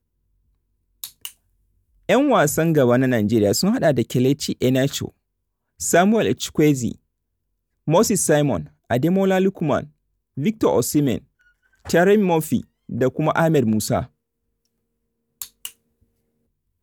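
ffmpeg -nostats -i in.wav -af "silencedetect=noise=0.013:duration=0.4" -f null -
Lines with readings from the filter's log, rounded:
silence_start: 0.00
silence_end: 1.04 | silence_duration: 1.04
silence_start: 1.31
silence_end: 2.09 | silence_duration: 0.78
silence_start: 5.08
silence_end: 5.80 | silence_duration: 0.72
silence_start: 6.95
silence_end: 7.88 | silence_duration: 0.93
silence_start: 9.86
silence_end: 10.37 | silence_duration: 0.51
silence_start: 11.19
silence_end: 11.85 | silence_duration: 0.67
silence_start: 14.06
silence_end: 15.42 | silence_duration: 1.36
silence_start: 15.70
silence_end: 16.82 | silence_duration: 1.12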